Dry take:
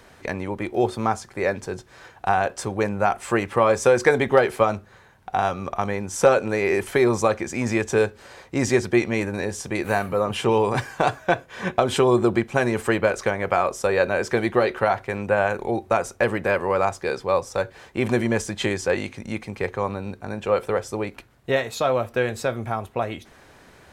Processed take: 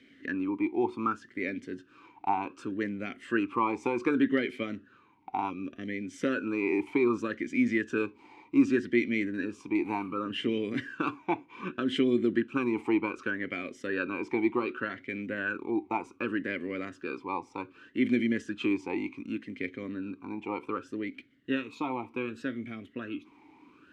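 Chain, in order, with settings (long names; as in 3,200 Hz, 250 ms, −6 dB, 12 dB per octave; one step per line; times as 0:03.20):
0:05.50–0:06.02: flat-topped bell 1,100 Hz −15 dB 1 octave
formant filter swept between two vowels i-u 0.66 Hz
level +6 dB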